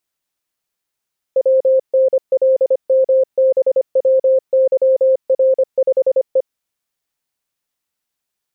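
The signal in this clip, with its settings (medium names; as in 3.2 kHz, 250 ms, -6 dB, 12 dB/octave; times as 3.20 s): Morse "WNLMBWYR5E" 25 wpm 526 Hz -9 dBFS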